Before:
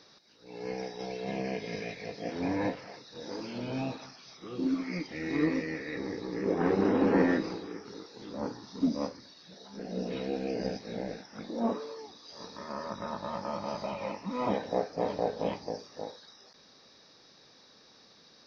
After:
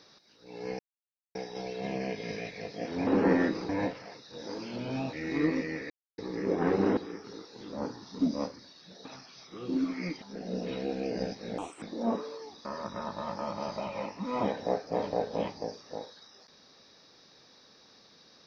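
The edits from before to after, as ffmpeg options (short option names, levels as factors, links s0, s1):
-filter_complex "[0:a]asplit=13[s0][s1][s2][s3][s4][s5][s6][s7][s8][s9][s10][s11][s12];[s0]atrim=end=0.79,asetpts=PTS-STARTPTS,afade=t=out:st=0.786:d=0.004:c=hsin,apad=pad_dur=0.56[s13];[s1]atrim=start=0.79:end=2.512,asetpts=PTS-STARTPTS,afade=t=in:d=0.004:c=hsin[s14];[s2]atrim=start=6.958:end=7.582[s15];[s3]atrim=start=2.508:end=3.952[s16];[s4]atrim=start=5.118:end=5.89,asetpts=PTS-STARTPTS,afade=t=out:st=0.768:d=0.004:c=hsin[s17];[s5]atrim=start=5.89:end=6.17,asetpts=PTS-STARTPTS,volume=0[s18];[s6]atrim=start=6.17:end=6.962,asetpts=PTS-STARTPTS,afade=t=in:d=0.004:c=hsin[s19];[s7]atrim=start=7.578:end=9.662[s20];[s8]atrim=start=3.948:end=5.122[s21];[s9]atrim=start=9.658:end=11.024[s22];[s10]atrim=start=11.02:end=11.39,asetpts=PTS-STARTPTS,asetrate=67914,aresample=44100,atrim=end_sample=10595,asetpts=PTS-STARTPTS[s23];[s11]atrim=start=11.386:end=12.222[s24];[s12]atrim=start=12.708[s25];[s13][s14]concat=n=2:v=0:a=1[s26];[s26][s15]acrossfade=d=0.004:c1=hsin:c2=hsin[s27];[s27][s16]acrossfade=d=0.004:c1=hsin:c2=hsin[s28];[s17][s18][s19]concat=n=3:v=0:a=1[s29];[s28][s29]acrossfade=d=0.004:c1=hsin:c2=hsin[s30];[s30][s20]acrossfade=d=0.004:c1=hsin:c2=hsin[s31];[s31][s21]acrossfade=d=0.004:c1=hsin:c2=hsin[s32];[s32][s22]acrossfade=d=0.004:c1=hsin:c2=hsin[s33];[s33][s23]acrossfade=d=0.004:c1=hsin:c2=hsin[s34];[s34][s24]acrossfade=d=0.004:c1=hsin:c2=hsin[s35];[s35][s25]acrossfade=d=0.004:c1=hsin:c2=hsin"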